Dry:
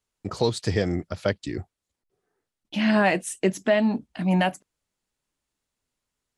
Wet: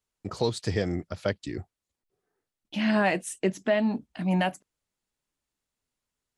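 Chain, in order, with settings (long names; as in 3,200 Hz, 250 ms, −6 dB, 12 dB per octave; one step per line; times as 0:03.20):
0:03.38–0:03.86: high-shelf EQ 9,700 Hz −11 dB
level −3.5 dB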